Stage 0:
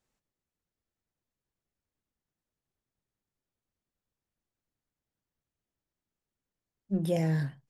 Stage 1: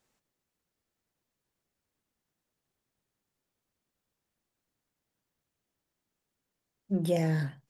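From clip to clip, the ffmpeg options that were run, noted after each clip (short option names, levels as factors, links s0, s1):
-filter_complex "[0:a]lowshelf=f=100:g=-9,asplit=2[s0][s1];[s1]acompressor=threshold=0.01:ratio=6,volume=1.06[s2];[s0][s2]amix=inputs=2:normalize=0"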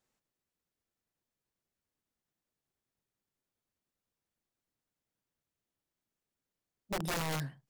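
-af "aeval=exprs='(mod(15*val(0)+1,2)-1)/15':c=same,volume=0.501"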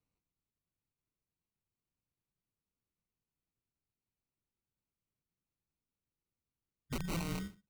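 -af "highpass=f=160:t=q:w=0.5412,highpass=f=160:t=q:w=1.307,lowpass=f=3300:t=q:w=0.5176,lowpass=f=3300:t=q:w=0.7071,lowpass=f=3300:t=q:w=1.932,afreqshift=-340,acrusher=samples=26:mix=1:aa=0.000001,equalizer=f=670:t=o:w=1.3:g=-10,volume=1.12"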